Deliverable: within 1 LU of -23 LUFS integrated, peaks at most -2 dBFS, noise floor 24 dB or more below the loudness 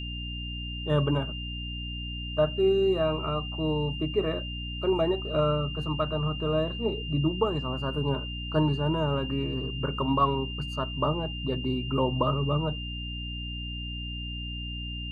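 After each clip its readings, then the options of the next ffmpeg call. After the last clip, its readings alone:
hum 60 Hz; harmonics up to 300 Hz; hum level -34 dBFS; steady tone 2800 Hz; tone level -37 dBFS; loudness -29.0 LUFS; peak -12.0 dBFS; loudness target -23.0 LUFS
-> -af "bandreject=f=60:t=h:w=6,bandreject=f=120:t=h:w=6,bandreject=f=180:t=h:w=6,bandreject=f=240:t=h:w=6,bandreject=f=300:t=h:w=6"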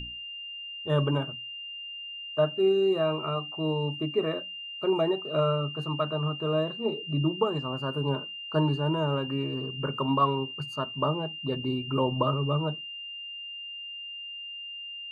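hum none; steady tone 2800 Hz; tone level -37 dBFS
-> -af "bandreject=f=2.8k:w=30"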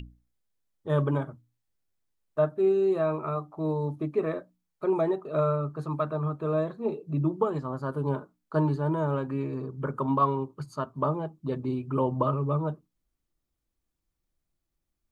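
steady tone none; loudness -29.0 LUFS; peak -12.0 dBFS; loudness target -23.0 LUFS
-> -af "volume=6dB"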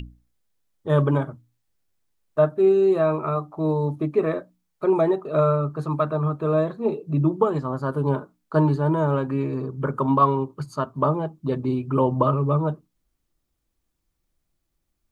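loudness -23.0 LUFS; peak -6.0 dBFS; noise floor -76 dBFS

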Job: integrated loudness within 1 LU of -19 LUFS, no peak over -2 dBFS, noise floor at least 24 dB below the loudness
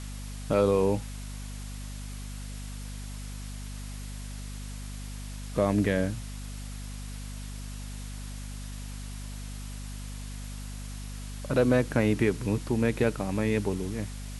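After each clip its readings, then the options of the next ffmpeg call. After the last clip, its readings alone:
hum 50 Hz; harmonics up to 250 Hz; hum level -36 dBFS; noise floor -38 dBFS; noise floor target -56 dBFS; loudness -31.5 LUFS; peak -11.0 dBFS; loudness target -19.0 LUFS
-> -af "bandreject=f=50:t=h:w=4,bandreject=f=100:t=h:w=4,bandreject=f=150:t=h:w=4,bandreject=f=200:t=h:w=4,bandreject=f=250:t=h:w=4"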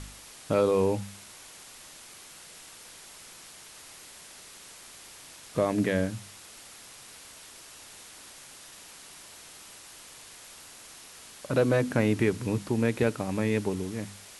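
hum none; noise floor -49 dBFS; noise floor target -52 dBFS
-> -af "afftdn=nr=6:nf=-49"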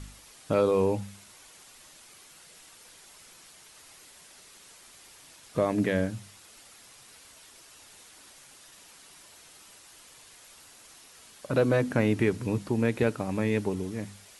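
noise floor -53 dBFS; loudness -27.5 LUFS; peak -11.0 dBFS; loudness target -19.0 LUFS
-> -af "volume=8.5dB"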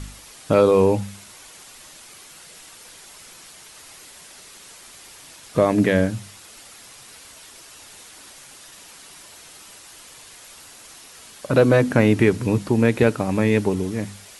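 loudness -19.0 LUFS; peak -2.5 dBFS; noise floor -45 dBFS

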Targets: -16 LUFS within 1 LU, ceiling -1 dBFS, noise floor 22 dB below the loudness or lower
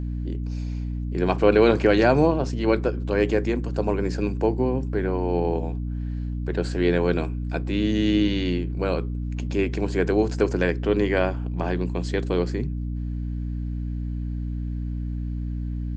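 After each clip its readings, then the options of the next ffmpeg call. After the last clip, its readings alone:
hum 60 Hz; harmonics up to 300 Hz; hum level -26 dBFS; loudness -24.5 LUFS; peak -4.5 dBFS; loudness target -16.0 LUFS
-> -af "bandreject=f=60:t=h:w=4,bandreject=f=120:t=h:w=4,bandreject=f=180:t=h:w=4,bandreject=f=240:t=h:w=4,bandreject=f=300:t=h:w=4"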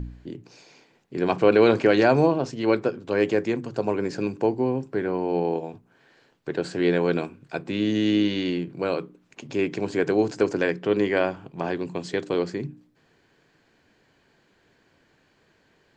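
hum none; loudness -24.5 LUFS; peak -5.0 dBFS; loudness target -16.0 LUFS
-> -af "volume=8.5dB,alimiter=limit=-1dB:level=0:latency=1"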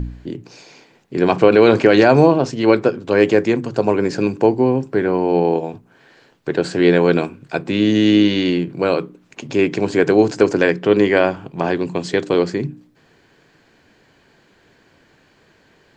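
loudness -16.5 LUFS; peak -1.0 dBFS; noise floor -56 dBFS

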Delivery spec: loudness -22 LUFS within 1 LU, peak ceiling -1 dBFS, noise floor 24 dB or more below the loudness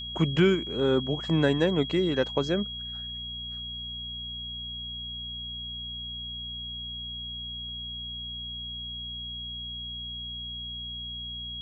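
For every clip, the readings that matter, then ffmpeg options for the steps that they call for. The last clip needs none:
hum 60 Hz; harmonics up to 240 Hz; hum level -42 dBFS; steady tone 3300 Hz; tone level -35 dBFS; loudness -30.5 LUFS; peak -10.0 dBFS; loudness target -22.0 LUFS
-> -af "bandreject=f=60:t=h:w=4,bandreject=f=120:t=h:w=4,bandreject=f=180:t=h:w=4,bandreject=f=240:t=h:w=4"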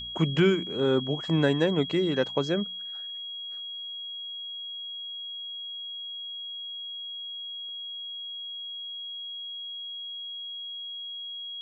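hum none; steady tone 3300 Hz; tone level -35 dBFS
-> -af "bandreject=f=3.3k:w=30"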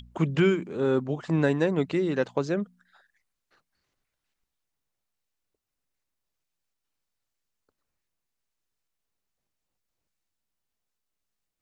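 steady tone none; loudness -26.0 LUFS; peak -10.5 dBFS; loudness target -22.0 LUFS
-> -af "volume=4dB"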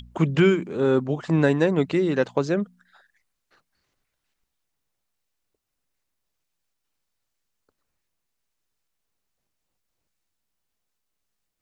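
loudness -22.0 LUFS; peak -6.5 dBFS; noise floor -80 dBFS

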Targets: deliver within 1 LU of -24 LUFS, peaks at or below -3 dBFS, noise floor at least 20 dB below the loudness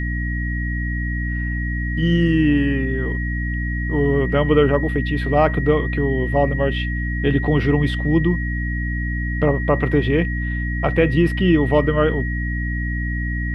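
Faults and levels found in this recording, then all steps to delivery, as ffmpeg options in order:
hum 60 Hz; harmonics up to 300 Hz; hum level -21 dBFS; steady tone 1900 Hz; tone level -28 dBFS; loudness -20.0 LUFS; peak -2.0 dBFS; loudness target -24.0 LUFS
-> -af "bandreject=f=60:t=h:w=6,bandreject=f=120:t=h:w=6,bandreject=f=180:t=h:w=6,bandreject=f=240:t=h:w=6,bandreject=f=300:t=h:w=6"
-af "bandreject=f=1.9k:w=30"
-af "volume=-4dB"

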